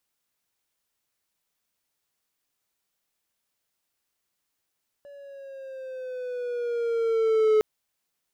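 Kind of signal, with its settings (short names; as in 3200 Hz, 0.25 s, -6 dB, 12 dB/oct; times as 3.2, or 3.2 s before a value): gliding synth tone triangle, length 2.56 s, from 572 Hz, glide -5 st, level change +27 dB, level -14 dB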